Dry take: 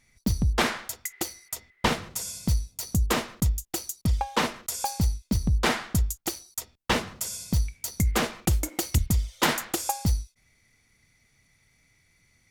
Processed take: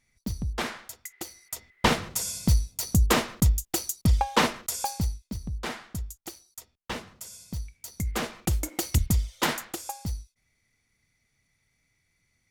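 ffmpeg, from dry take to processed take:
ffmpeg -i in.wav -af "volume=13.5dB,afade=type=in:start_time=1.25:duration=0.73:silence=0.316228,afade=type=out:start_time=4.44:duration=0.89:silence=0.223872,afade=type=in:start_time=7.73:duration=1.36:silence=0.298538,afade=type=out:start_time=9.09:duration=0.72:silence=0.375837" out.wav

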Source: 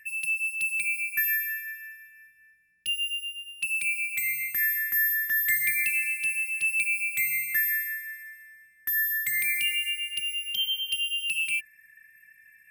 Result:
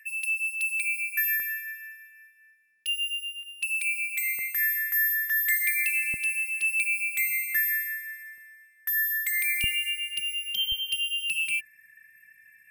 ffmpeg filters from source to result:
ffmpeg -i in.wav -af "asetnsamples=nb_out_samples=441:pad=0,asendcmd='1.4 highpass f 410;3.43 highpass f 1300;4.39 highpass f 620;6.14 highpass f 210;8.38 highpass f 460;9.64 highpass f 110;10.72 highpass f 53',highpass=1100" out.wav

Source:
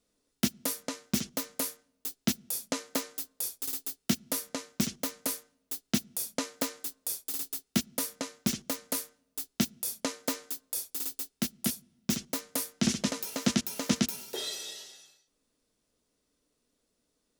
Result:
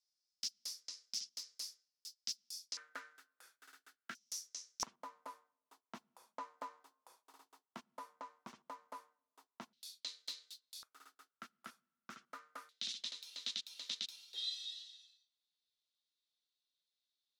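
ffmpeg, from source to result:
ffmpeg -i in.wav -af "asetnsamples=nb_out_samples=441:pad=0,asendcmd='2.77 bandpass f 1500;4.15 bandpass f 5700;4.83 bandpass f 1000;9.73 bandpass f 4000;10.83 bandpass f 1300;12.69 bandpass f 3800',bandpass=frequency=5100:width_type=q:width=5.5:csg=0" out.wav

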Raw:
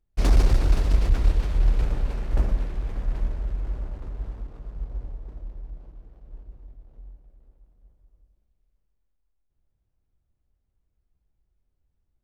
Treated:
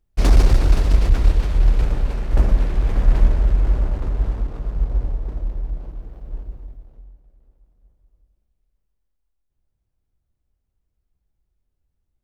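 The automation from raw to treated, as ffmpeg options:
ffmpeg -i in.wav -af "volume=12dB,afade=type=in:start_time=2.28:duration=0.81:silence=0.446684,afade=type=out:start_time=6.37:duration=0.7:silence=0.251189" out.wav

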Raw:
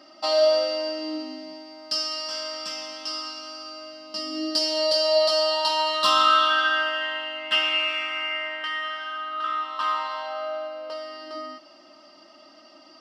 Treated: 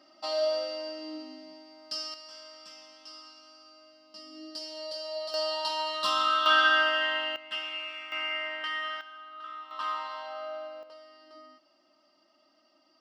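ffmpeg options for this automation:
ffmpeg -i in.wav -af "asetnsamples=nb_out_samples=441:pad=0,asendcmd='2.14 volume volume -16dB;5.34 volume volume -8dB;6.46 volume volume 0dB;7.36 volume volume -13dB;8.12 volume volume -4dB;9.01 volume volume -14.5dB;9.71 volume volume -7.5dB;10.83 volume volume -16dB',volume=-9dB" out.wav

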